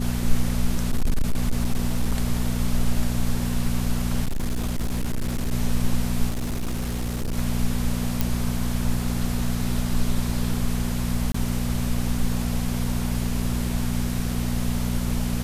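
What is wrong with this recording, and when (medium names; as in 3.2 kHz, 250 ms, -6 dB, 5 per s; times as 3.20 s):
hum 60 Hz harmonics 4 -26 dBFS
0.71–2.20 s: clipped -16 dBFS
4.24–5.52 s: clipped -21 dBFS
6.29–7.37 s: clipped -23 dBFS
8.21 s: pop
11.32–11.34 s: dropout 24 ms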